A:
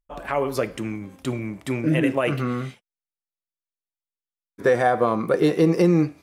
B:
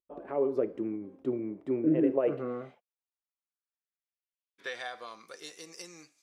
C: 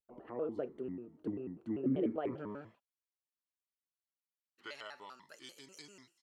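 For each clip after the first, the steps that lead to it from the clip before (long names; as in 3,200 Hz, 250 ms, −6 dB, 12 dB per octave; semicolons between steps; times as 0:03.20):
band-pass filter sweep 370 Hz → 6,900 Hz, 0:02.00–0:05.53
comb filter 0.8 ms, depth 38%; pitch modulation by a square or saw wave square 5.1 Hz, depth 250 cents; level −8 dB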